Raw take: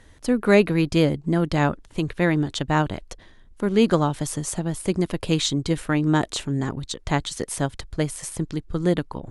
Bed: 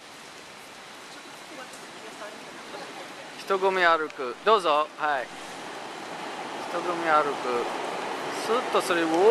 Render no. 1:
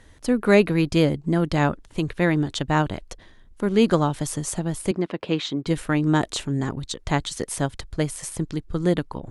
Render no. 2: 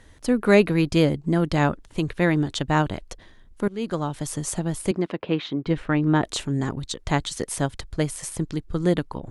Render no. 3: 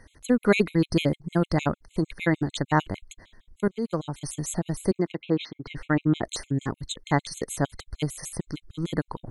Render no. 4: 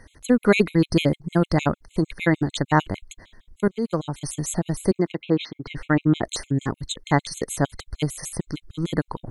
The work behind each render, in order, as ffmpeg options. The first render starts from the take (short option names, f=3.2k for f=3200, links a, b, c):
-filter_complex "[0:a]asettb=1/sr,asplit=3[a][b][c];[a]atrim=end=4.914[d];[b]atrim=start=4.91:end=5.67,asetpts=PTS-STARTPTS,afade=t=in:d=0.004:c=qsin,afade=t=out:st=0.756:d=0.004:c=qsin,highpass=210,lowpass=3k[e];[c]atrim=start=5.666[f];[d][e]acrossfade=d=0.004:c1=hsin:c2=qsin[g];[g][f]acrossfade=d=0.004:c1=qsin:c2=hsin"
-filter_complex "[0:a]asplit=3[a][b][c];[a]afade=t=out:st=5.16:d=0.02[d];[b]lowpass=3k,afade=t=in:st=5.16:d=0.02,afade=t=out:st=6.23:d=0.02[e];[c]afade=t=in:st=6.23:d=0.02[f];[d][e][f]amix=inputs=3:normalize=0,asplit=2[g][h];[g]atrim=end=3.68,asetpts=PTS-STARTPTS,afade=t=out:st=3.676:d=0.004:c=hsin:silence=0.125893[i];[h]atrim=start=3.68,asetpts=PTS-STARTPTS,afade=t=in:d=0.8:silence=0.125893[j];[i][j]concat=n=2:v=0:a=1"
-af "afftfilt=real='re*gt(sin(2*PI*6.6*pts/sr)*(1-2*mod(floor(b*sr/1024/2100),2)),0)':imag='im*gt(sin(2*PI*6.6*pts/sr)*(1-2*mod(floor(b*sr/1024/2100),2)),0)':win_size=1024:overlap=0.75"
-af "volume=3.5dB,alimiter=limit=-3dB:level=0:latency=1"